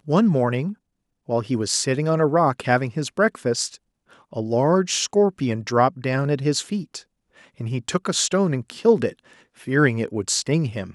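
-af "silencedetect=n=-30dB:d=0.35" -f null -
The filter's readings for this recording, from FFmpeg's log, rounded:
silence_start: 0.73
silence_end: 1.29 | silence_duration: 0.56
silence_start: 3.75
silence_end: 4.33 | silence_duration: 0.58
silence_start: 6.98
silence_end: 7.60 | silence_duration: 0.62
silence_start: 9.10
silence_end: 9.67 | silence_duration: 0.58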